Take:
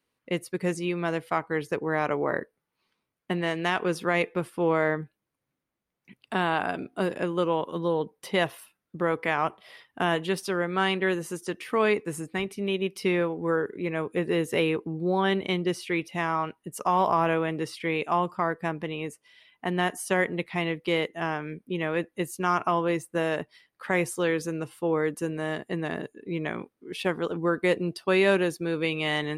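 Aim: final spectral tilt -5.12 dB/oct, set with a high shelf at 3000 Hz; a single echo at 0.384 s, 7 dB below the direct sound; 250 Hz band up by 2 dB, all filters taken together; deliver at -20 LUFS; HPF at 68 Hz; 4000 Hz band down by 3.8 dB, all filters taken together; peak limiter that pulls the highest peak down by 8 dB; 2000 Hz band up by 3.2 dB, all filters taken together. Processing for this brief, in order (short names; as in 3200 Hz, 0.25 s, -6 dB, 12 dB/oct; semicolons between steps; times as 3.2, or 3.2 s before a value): HPF 68 Hz; bell 250 Hz +3.5 dB; bell 2000 Hz +7 dB; high shelf 3000 Hz -5.5 dB; bell 4000 Hz -6 dB; limiter -17 dBFS; echo 0.384 s -7 dB; gain +9 dB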